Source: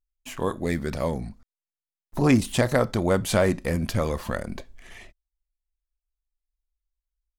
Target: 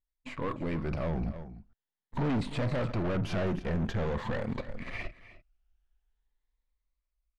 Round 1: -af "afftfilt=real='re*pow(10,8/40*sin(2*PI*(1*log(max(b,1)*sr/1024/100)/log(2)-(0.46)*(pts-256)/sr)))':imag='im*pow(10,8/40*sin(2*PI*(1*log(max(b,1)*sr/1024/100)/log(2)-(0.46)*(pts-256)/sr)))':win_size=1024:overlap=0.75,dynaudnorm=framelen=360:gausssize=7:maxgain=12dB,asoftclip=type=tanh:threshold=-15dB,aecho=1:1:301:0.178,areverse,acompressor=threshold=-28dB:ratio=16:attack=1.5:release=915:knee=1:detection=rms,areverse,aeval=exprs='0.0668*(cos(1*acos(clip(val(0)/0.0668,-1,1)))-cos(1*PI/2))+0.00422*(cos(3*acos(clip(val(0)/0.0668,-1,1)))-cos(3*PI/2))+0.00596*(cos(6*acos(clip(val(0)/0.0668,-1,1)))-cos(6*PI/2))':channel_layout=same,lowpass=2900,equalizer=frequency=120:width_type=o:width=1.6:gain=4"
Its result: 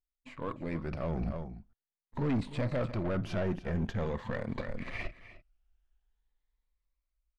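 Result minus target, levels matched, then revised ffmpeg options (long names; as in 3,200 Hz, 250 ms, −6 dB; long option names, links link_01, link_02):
soft clipping: distortion −6 dB
-af "afftfilt=real='re*pow(10,8/40*sin(2*PI*(1*log(max(b,1)*sr/1024/100)/log(2)-(0.46)*(pts-256)/sr)))':imag='im*pow(10,8/40*sin(2*PI*(1*log(max(b,1)*sr/1024/100)/log(2)-(0.46)*(pts-256)/sr)))':win_size=1024:overlap=0.75,dynaudnorm=framelen=360:gausssize=7:maxgain=12dB,asoftclip=type=tanh:threshold=-25dB,aecho=1:1:301:0.178,areverse,acompressor=threshold=-28dB:ratio=16:attack=1.5:release=915:knee=1:detection=rms,areverse,aeval=exprs='0.0668*(cos(1*acos(clip(val(0)/0.0668,-1,1)))-cos(1*PI/2))+0.00422*(cos(3*acos(clip(val(0)/0.0668,-1,1)))-cos(3*PI/2))+0.00596*(cos(6*acos(clip(val(0)/0.0668,-1,1)))-cos(6*PI/2))':channel_layout=same,lowpass=2900,equalizer=frequency=120:width_type=o:width=1.6:gain=4"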